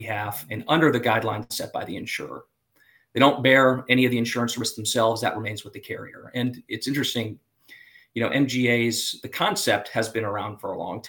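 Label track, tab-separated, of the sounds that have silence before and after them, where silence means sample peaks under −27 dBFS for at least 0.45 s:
3.160000	7.320000	sound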